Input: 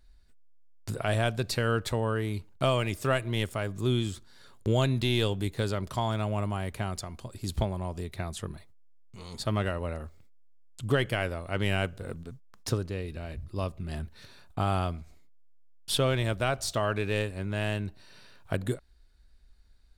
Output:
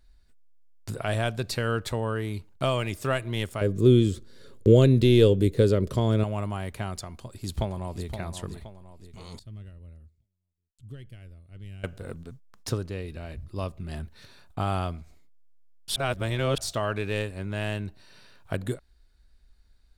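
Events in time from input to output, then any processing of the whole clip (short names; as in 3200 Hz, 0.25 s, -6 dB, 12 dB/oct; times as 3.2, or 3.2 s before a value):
3.61–6.24 resonant low shelf 610 Hz +7.5 dB, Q 3
7.1–8.11 echo throw 0.52 s, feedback 45%, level -9 dB
9.39–11.84 passive tone stack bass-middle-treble 10-0-1
15.96–16.58 reverse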